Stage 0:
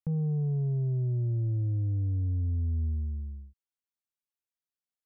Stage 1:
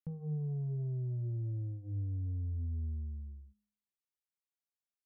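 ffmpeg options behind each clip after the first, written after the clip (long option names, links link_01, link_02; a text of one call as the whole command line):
ffmpeg -i in.wav -af "bandreject=frequency=52.1:width_type=h:width=4,bandreject=frequency=104.2:width_type=h:width=4,bandreject=frequency=156.3:width_type=h:width=4,bandreject=frequency=208.4:width_type=h:width=4,bandreject=frequency=260.5:width_type=h:width=4,bandreject=frequency=312.6:width_type=h:width=4,bandreject=frequency=364.7:width_type=h:width=4,bandreject=frequency=416.8:width_type=h:width=4,bandreject=frequency=468.9:width_type=h:width=4,bandreject=frequency=521:width_type=h:width=4,bandreject=frequency=573.1:width_type=h:width=4,bandreject=frequency=625.2:width_type=h:width=4,bandreject=frequency=677.3:width_type=h:width=4,bandreject=frequency=729.4:width_type=h:width=4,bandreject=frequency=781.5:width_type=h:width=4,bandreject=frequency=833.6:width_type=h:width=4,bandreject=frequency=885.7:width_type=h:width=4,bandreject=frequency=937.8:width_type=h:width=4,bandreject=frequency=989.9:width_type=h:width=4,bandreject=frequency=1042:width_type=h:width=4,bandreject=frequency=1094.1:width_type=h:width=4,bandreject=frequency=1146.2:width_type=h:width=4,bandreject=frequency=1198.3:width_type=h:width=4,bandreject=frequency=1250.4:width_type=h:width=4,bandreject=frequency=1302.5:width_type=h:width=4,bandreject=frequency=1354.6:width_type=h:width=4,bandreject=frequency=1406.7:width_type=h:width=4,bandreject=frequency=1458.8:width_type=h:width=4,bandreject=frequency=1510.9:width_type=h:width=4,bandreject=frequency=1563:width_type=h:width=4,bandreject=frequency=1615.1:width_type=h:width=4,bandreject=frequency=1667.2:width_type=h:width=4,bandreject=frequency=1719.3:width_type=h:width=4,bandreject=frequency=1771.4:width_type=h:width=4,bandreject=frequency=1823.5:width_type=h:width=4,volume=-7.5dB" out.wav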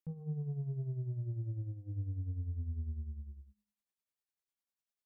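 ffmpeg -i in.wav -af "tremolo=f=10:d=0.62,volume=1dB" out.wav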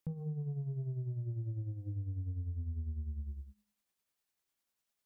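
ffmpeg -i in.wav -af "acompressor=threshold=-44dB:ratio=5,volume=7.5dB" out.wav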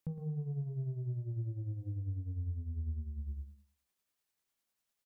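ffmpeg -i in.wav -af "aecho=1:1:112|224|336:0.251|0.0578|0.0133" out.wav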